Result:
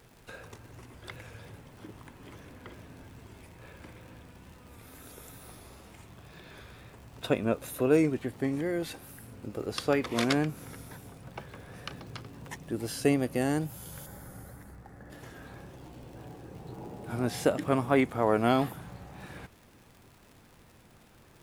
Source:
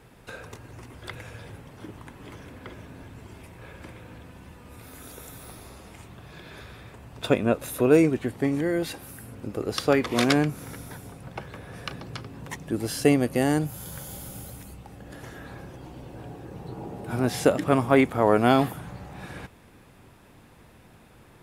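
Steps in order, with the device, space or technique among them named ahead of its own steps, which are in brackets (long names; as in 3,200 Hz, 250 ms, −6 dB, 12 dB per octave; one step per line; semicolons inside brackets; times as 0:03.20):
vinyl LP (tape wow and flutter; surface crackle 100 per second −40 dBFS; pink noise bed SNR 33 dB)
0:14.06–0:15.10: high shelf with overshoot 2,200 Hz −6.5 dB, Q 3
level −5.5 dB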